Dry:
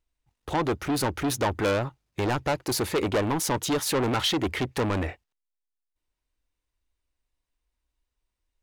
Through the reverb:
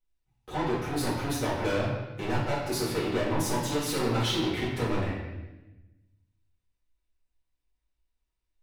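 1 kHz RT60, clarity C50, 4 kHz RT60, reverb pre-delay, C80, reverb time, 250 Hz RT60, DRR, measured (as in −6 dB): 0.95 s, 1.5 dB, 0.95 s, 4 ms, 4.0 dB, 1.1 s, 1.5 s, −9.5 dB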